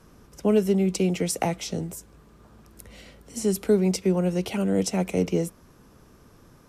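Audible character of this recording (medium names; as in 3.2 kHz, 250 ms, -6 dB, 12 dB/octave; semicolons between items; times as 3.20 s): noise floor -55 dBFS; spectral tilt -6.0 dB/octave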